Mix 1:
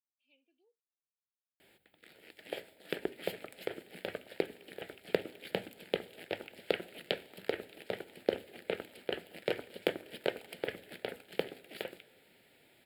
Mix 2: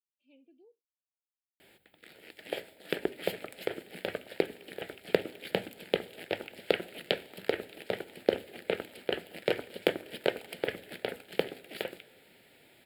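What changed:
speech: remove resonant band-pass 3,300 Hz, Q 0.59
background +4.5 dB

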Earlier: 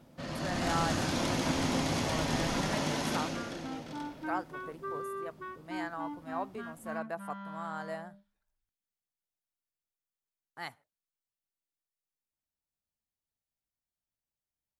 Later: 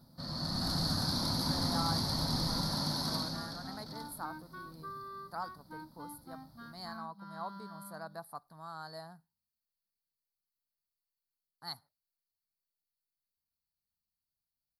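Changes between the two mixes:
speech: entry +1.05 s
second sound: add spectral tilt +2 dB per octave
master: add drawn EQ curve 190 Hz 0 dB, 390 Hz −11 dB, 570 Hz −9 dB, 970 Hz −3 dB, 1,400 Hz −5 dB, 2,800 Hz −23 dB, 4,400 Hz +12 dB, 6,900 Hz −12 dB, 11,000 Hz +6 dB

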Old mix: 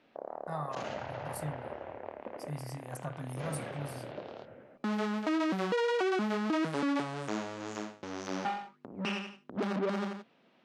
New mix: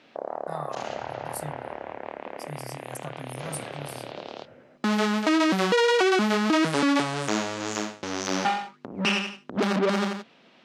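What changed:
first sound +8.0 dB
master: add high-shelf EQ 2,400 Hz +8.5 dB

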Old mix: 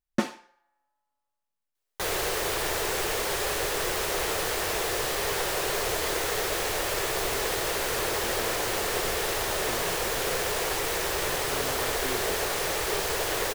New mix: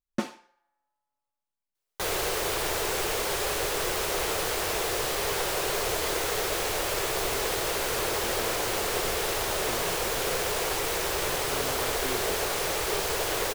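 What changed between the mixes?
first sound −3.5 dB
master: add parametric band 1,800 Hz −3.5 dB 0.2 octaves

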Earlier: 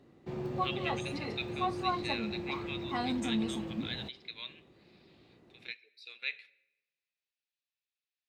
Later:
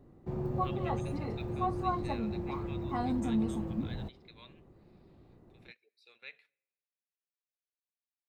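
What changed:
speech: send −11.5 dB
master: remove meter weighting curve D

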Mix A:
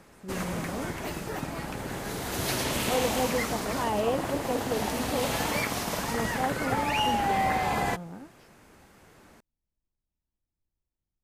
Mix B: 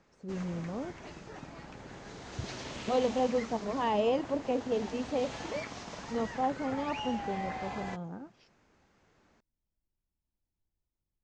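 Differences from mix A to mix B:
background −12.0 dB
master: add Butterworth low-pass 7,100 Hz 48 dB per octave

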